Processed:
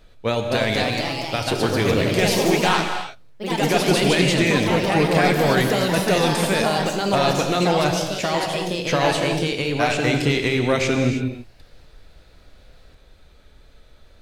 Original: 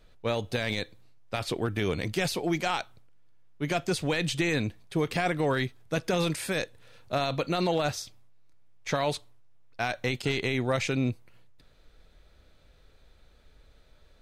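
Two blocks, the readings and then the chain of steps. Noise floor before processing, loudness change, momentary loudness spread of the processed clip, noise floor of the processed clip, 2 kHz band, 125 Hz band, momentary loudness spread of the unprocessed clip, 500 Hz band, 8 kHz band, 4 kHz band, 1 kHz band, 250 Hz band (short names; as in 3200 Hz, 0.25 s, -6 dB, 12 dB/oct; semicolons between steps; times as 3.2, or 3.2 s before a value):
-59 dBFS, +9.5 dB, 7 LU, -51 dBFS, +10.0 dB, +9.5 dB, 8 LU, +10.5 dB, +11.0 dB, +11.0 dB, +11.5 dB, +10.5 dB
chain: wow and flutter 27 cents; non-linear reverb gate 0.35 s flat, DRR 4.5 dB; echoes that change speed 0.283 s, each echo +2 st, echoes 3; gain +6.5 dB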